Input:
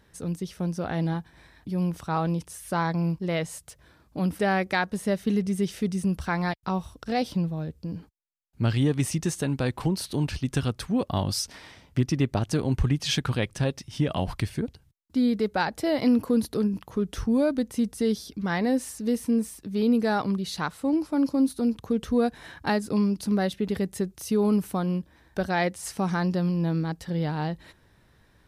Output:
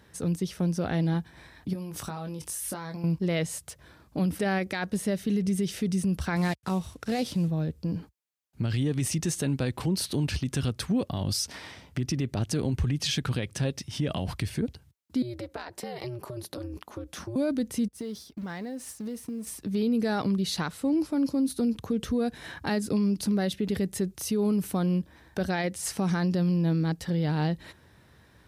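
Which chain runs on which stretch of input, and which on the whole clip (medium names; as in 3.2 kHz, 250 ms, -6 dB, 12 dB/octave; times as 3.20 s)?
1.73–3.04 s: treble shelf 5.3 kHz +9.5 dB + compression 12:1, threshold -34 dBFS + doubling 20 ms -7 dB
6.36–7.48 s: CVSD coder 64 kbps + high-pass 54 Hz
15.22–17.36 s: high-pass 310 Hz 6 dB/octave + compression, threshold -34 dBFS + ring modulator 120 Hz
17.88–19.47 s: companding laws mixed up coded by mu + expander -30 dBFS + compression 8:1, threshold -36 dBFS
whole clip: high-pass 55 Hz 24 dB/octave; dynamic bell 980 Hz, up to -6 dB, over -42 dBFS, Q 1; peak limiter -23 dBFS; trim +3.5 dB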